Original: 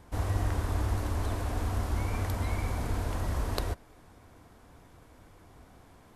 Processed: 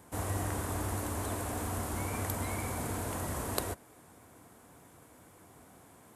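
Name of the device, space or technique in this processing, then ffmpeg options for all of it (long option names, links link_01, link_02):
budget condenser microphone: -af "highpass=120,highshelf=frequency=6500:width_type=q:width=1.5:gain=7.5"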